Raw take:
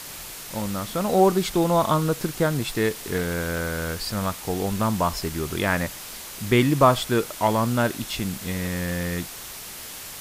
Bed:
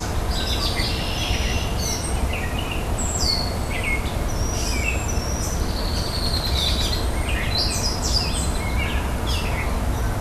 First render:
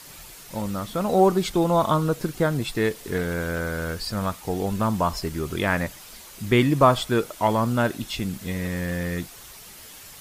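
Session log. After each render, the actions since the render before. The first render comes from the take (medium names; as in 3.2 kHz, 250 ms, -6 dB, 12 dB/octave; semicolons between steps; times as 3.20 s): noise reduction 8 dB, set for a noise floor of -38 dBFS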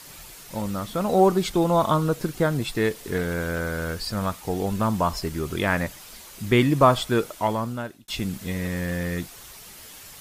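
7.26–8.08 s: fade out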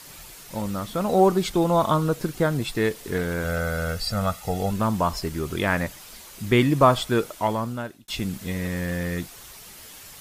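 3.44–4.71 s: comb 1.5 ms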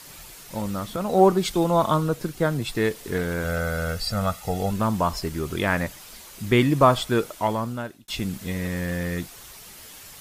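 0.96–2.68 s: three bands expanded up and down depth 40%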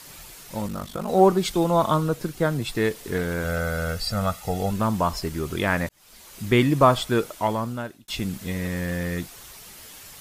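0.67–1.08 s: ring modulator 25 Hz; 5.89–6.39 s: fade in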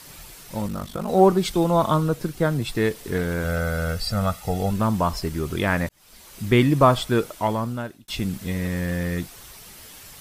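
bass shelf 240 Hz +3.5 dB; band-stop 6.8 kHz, Q 25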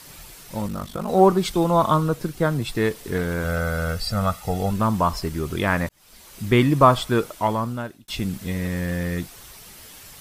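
dynamic bell 1.1 kHz, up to +4 dB, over -37 dBFS, Q 2.4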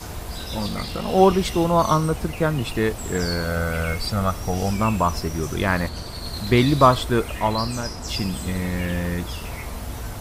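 add bed -9 dB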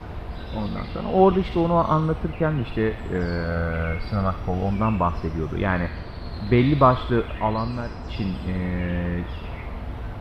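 distance through air 440 m; feedback echo behind a high-pass 61 ms, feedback 64%, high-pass 2.5 kHz, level -3.5 dB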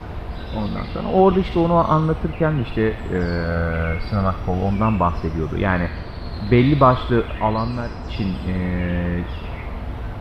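trim +3.5 dB; peak limiter -3 dBFS, peak gain reduction 3 dB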